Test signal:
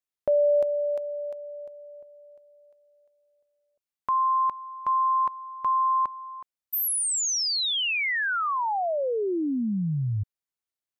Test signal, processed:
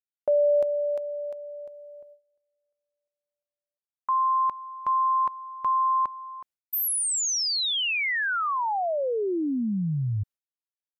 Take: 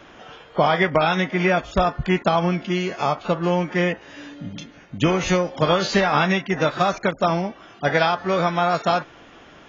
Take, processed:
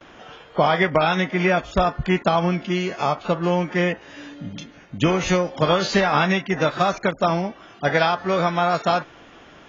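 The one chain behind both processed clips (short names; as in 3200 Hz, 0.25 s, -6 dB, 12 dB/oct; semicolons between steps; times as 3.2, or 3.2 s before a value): gate with hold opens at -39 dBFS, closes at -44 dBFS, hold 95 ms, range -23 dB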